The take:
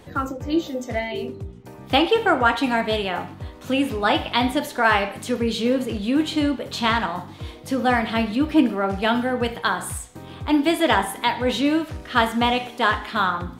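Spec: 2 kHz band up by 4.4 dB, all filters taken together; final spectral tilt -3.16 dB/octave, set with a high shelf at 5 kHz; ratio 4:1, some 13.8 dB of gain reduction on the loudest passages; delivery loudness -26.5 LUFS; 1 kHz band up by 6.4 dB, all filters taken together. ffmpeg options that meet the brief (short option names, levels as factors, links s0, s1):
-af "equalizer=f=1000:t=o:g=7.5,equalizer=f=2000:t=o:g=3.5,highshelf=f=5000:g=-5,acompressor=threshold=0.0562:ratio=4,volume=1.26"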